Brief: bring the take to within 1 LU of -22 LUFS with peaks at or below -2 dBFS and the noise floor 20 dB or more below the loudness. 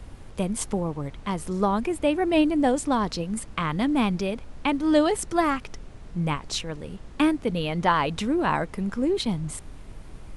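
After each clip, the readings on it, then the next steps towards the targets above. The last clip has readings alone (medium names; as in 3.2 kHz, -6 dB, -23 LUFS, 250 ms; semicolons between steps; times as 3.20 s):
noise floor -44 dBFS; noise floor target -46 dBFS; loudness -25.5 LUFS; peak level -7.5 dBFS; loudness target -22.0 LUFS
-> noise print and reduce 6 dB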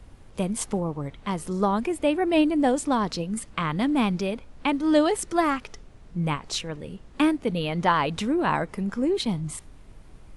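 noise floor -49 dBFS; loudness -25.5 LUFS; peak level -7.5 dBFS; loudness target -22.0 LUFS
-> trim +3.5 dB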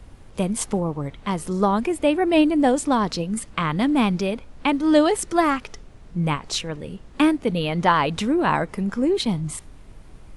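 loudness -22.0 LUFS; peak level -4.0 dBFS; noise floor -45 dBFS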